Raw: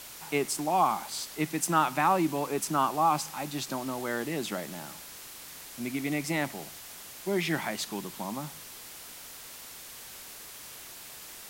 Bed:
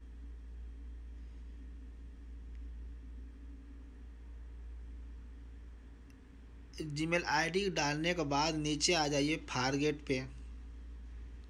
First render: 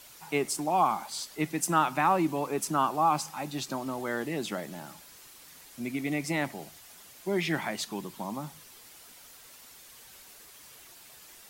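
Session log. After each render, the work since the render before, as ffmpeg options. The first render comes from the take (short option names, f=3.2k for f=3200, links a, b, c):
-af "afftdn=nr=8:nf=-46"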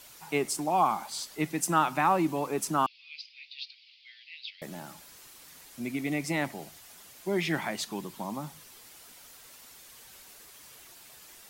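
-filter_complex "[0:a]asettb=1/sr,asplit=3[a][b][c];[a]atrim=end=2.864[d];[b]atrim=start=2.86:end=4.62,asetpts=PTS-STARTPTS,afade=t=in:d=0.004:c=qsin,afade=t=out:st=1.756:d=0.004:c=qsin,asuperpass=centerf=3300:order=12:qfactor=1.2[e];[c]atrim=start=4.616[f];[d][e]acrossfade=d=0.004:c1=hsin:c2=qsin[g];[g][f]acrossfade=d=0.004:c1=qsin:c2=hsin"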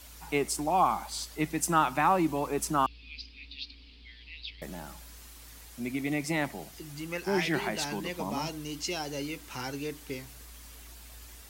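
-filter_complex "[1:a]volume=-3.5dB[a];[0:a][a]amix=inputs=2:normalize=0"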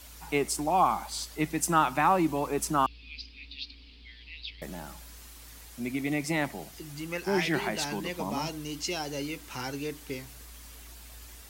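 -af "volume=1dB"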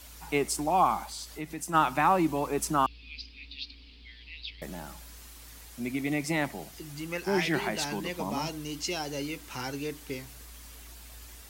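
-filter_complex "[0:a]asplit=3[a][b][c];[a]afade=t=out:st=1.04:d=0.02[d];[b]acompressor=threshold=-39dB:ratio=2:attack=3.2:release=140:knee=1:detection=peak,afade=t=in:st=1.04:d=0.02,afade=t=out:st=1.73:d=0.02[e];[c]afade=t=in:st=1.73:d=0.02[f];[d][e][f]amix=inputs=3:normalize=0"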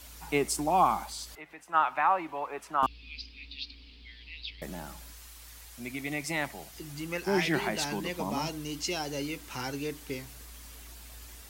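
-filter_complex "[0:a]asettb=1/sr,asplit=3[a][b][c];[a]atrim=end=1.354[d];[b]atrim=start=1.35:end=2.83,asetpts=PTS-STARTPTS,afade=t=in:d=0.004:c=qsin,afade=t=out:st=1.476:d=0.004:c=qsin,acrossover=split=550 2900:gain=0.1 1 0.1[e][f][g];[e][f][g]amix=inputs=3:normalize=0[h];[c]atrim=start=2.826[i];[d][h]acrossfade=d=0.004:c1=hsin:c2=qsin[j];[j][i]acrossfade=d=0.004:c1=qsin:c2=hsin,asettb=1/sr,asplit=3[k][l][m];[k]atrim=end=5.124[n];[l]atrim=start=5.12:end=6.76,asetpts=PTS-STARTPTS,afade=t=in:d=0.004:c=qsin,afade=t=out:st=1.636:d=0.004:c=qsin,equalizer=f=240:w=0.54:g=-7.5[o];[m]atrim=start=6.756[p];[n][o]acrossfade=d=0.004:c1=hsin:c2=qsin[q];[q][p]acrossfade=d=0.004:c1=qsin:c2=hsin"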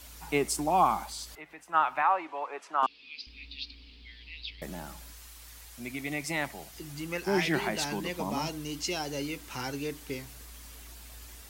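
-filter_complex "[0:a]asettb=1/sr,asplit=3[a][b][c];[a]atrim=end=2.024[d];[b]atrim=start=2.02:end=3.27,asetpts=PTS-STARTPTS,afade=t=in:d=0.004:c=qsin,afade=t=out:st=1.246:d=0.004:c=qsin,highpass=360,lowpass=7k[e];[c]atrim=start=3.266[f];[d][e]acrossfade=d=0.004:c1=hsin:c2=qsin[g];[g][f]acrossfade=d=0.004:c1=qsin:c2=hsin"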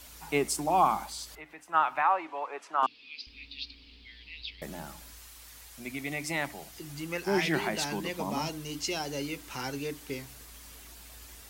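-af "bandreject=f=60:t=h:w=6,bandreject=f=120:t=h:w=6,bandreject=f=180:t=h:w=6,bandreject=f=240:t=h:w=6,bandreject=f=300:t=h:w=6"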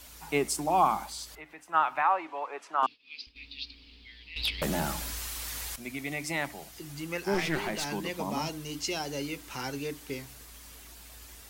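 -filter_complex "[0:a]asettb=1/sr,asplit=3[a][b][c];[a]atrim=end=2.754[d];[b]atrim=start=2.75:end=3.36,asetpts=PTS-STARTPTS,afade=t=in:d=0.004:c=qsin,afade=t=out:st=0.606:d=0.004:c=qsin,agate=range=-33dB:threshold=-47dB:ratio=3:release=100:detection=peak[e];[c]atrim=start=3.356[f];[d][e]acrossfade=d=0.004:c1=hsin:c2=qsin[g];[g][f]acrossfade=d=0.004:c1=qsin:c2=hsin,asettb=1/sr,asplit=3[h][i][j];[h]atrim=end=4.364[k];[i]atrim=start=4.36:end=5.76,asetpts=PTS-STARTPTS,afade=t=in:d=0.004:c=qsin,afade=t=out:st=1.396:d=0.004:c=qsin,aeval=exprs='0.0668*sin(PI/2*2.82*val(0)/0.0668)':c=same[l];[j]atrim=start=5.756[m];[k][l]acrossfade=d=0.004:c1=hsin:c2=qsin[n];[n][m]acrossfade=d=0.004:c1=qsin:c2=hsin,asettb=1/sr,asplit=3[o][p][q];[o]atrim=end=7.344[r];[p]atrim=start=7.34:end=7.87,asetpts=PTS-STARTPTS,afade=t=in:d=0.004:c=qsin,afade=t=out:st=0.526:d=0.004:c=qsin,aeval=exprs='clip(val(0),-1,0.0211)':c=same[s];[q]atrim=start=7.866[t];[r][s]acrossfade=d=0.004:c1=hsin:c2=qsin[u];[u][t]acrossfade=d=0.004:c1=qsin:c2=hsin"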